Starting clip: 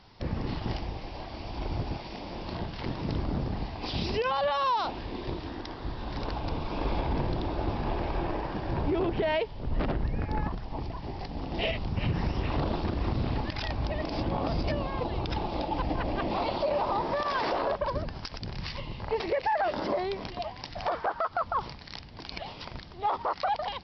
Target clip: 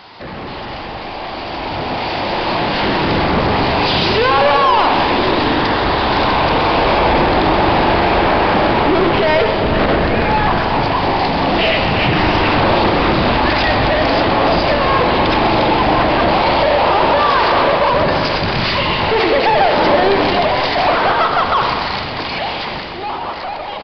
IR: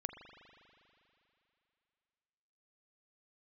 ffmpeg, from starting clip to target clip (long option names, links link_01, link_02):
-filter_complex "[0:a]asplit=2[link_01][link_02];[link_02]highpass=frequency=720:poles=1,volume=32dB,asoftclip=type=tanh:threshold=-17.5dB[link_03];[link_01][link_03]amix=inputs=2:normalize=0,lowpass=frequency=3700:poles=1,volume=-6dB,aresample=11025,aresample=44100[link_04];[1:a]atrim=start_sample=2205[link_05];[link_04][link_05]afir=irnorm=-1:irlink=0,dynaudnorm=framelen=490:gausssize=9:maxgain=14.5dB,asplit=9[link_06][link_07][link_08][link_09][link_10][link_11][link_12][link_13][link_14];[link_07]adelay=128,afreqshift=-100,volume=-10dB[link_15];[link_08]adelay=256,afreqshift=-200,volume=-14dB[link_16];[link_09]adelay=384,afreqshift=-300,volume=-18dB[link_17];[link_10]adelay=512,afreqshift=-400,volume=-22dB[link_18];[link_11]adelay=640,afreqshift=-500,volume=-26.1dB[link_19];[link_12]adelay=768,afreqshift=-600,volume=-30.1dB[link_20];[link_13]adelay=896,afreqshift=-700,volume=-34.1dB[link_21];[link_14]adelay=1024,afreqshift=-800,volume=-38.1dB[link_22];[link_06][link_15][link_16][link_17][link_18][link_19][link_20][link_21][link_22]amix=inputs=9:normalize=0,volume=-1dB"